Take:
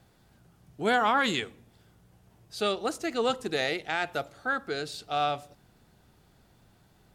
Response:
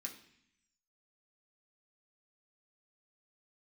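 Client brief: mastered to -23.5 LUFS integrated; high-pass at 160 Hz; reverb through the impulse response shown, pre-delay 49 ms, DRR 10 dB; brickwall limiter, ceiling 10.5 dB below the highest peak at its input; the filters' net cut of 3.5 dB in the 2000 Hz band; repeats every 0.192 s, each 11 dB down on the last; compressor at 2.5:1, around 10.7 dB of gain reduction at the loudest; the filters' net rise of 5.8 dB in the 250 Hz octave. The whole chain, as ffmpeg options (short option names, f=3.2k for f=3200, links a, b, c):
-filter_complex "[0:a]highpass=160,equalizer=f=250:t=o:g=8,equalizer=f=2k:t=o:g=-5,acompressor=threshold=-36dB:ratio=2.5,alimiter=level_in=7dB:limit=-24dB:level=0:latency=1,volume=-7dB,aecho=1:1:192|384|576:0.282|0.0789|0.0221,asplit=2[a][b];[1:a]atrim=start_sample=2205,adelay=49[c];[b][c]afir=irnorm=-1:irlink=0,volume=-7dB[d];[a][d]amix=inputs=2:normalize=0,volume=17.5dB"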